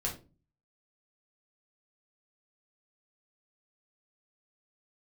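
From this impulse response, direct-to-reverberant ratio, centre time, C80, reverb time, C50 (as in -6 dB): -3.5 dB, 21 ms, 16.0 dB, 0.35 s, 9.5 dB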